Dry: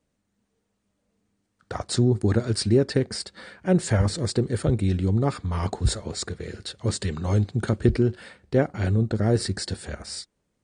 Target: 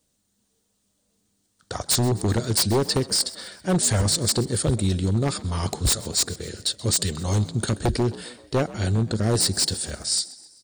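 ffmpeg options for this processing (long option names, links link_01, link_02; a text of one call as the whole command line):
ffmpeg -i in.wav -filter_complex "[0:a]aexciter=amount=4:drive=4.5:freq=3200,aeval=exprs='0.2*(abs(mod(val(0)/0.2+3,4)-2)-1)':channel_layout=same,asplit=5[link_01][link_02][link_03][link_04][link_05];[link_02]adelay=130,afreqshift=61,volume=-19dB[link_06];[link_03]adelay=260,afreqshift=122,volume=-24.5dB[link_07];[link_04]adelay=390,afreqshift=183,volume=-30dB[link_08];[link_05]adelay=520,afreqshift=244,volume=-35.5dB[link_09];[link_01][link_06][link_07][link_08][link_09]amix=inputs=5:normalize=0" out.wav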